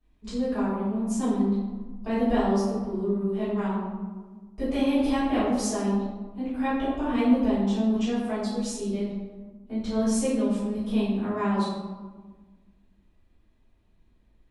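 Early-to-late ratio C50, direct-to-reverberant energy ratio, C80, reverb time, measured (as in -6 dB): -1.0 dB, -16.5 dB, 2.0 dB, 1.4 s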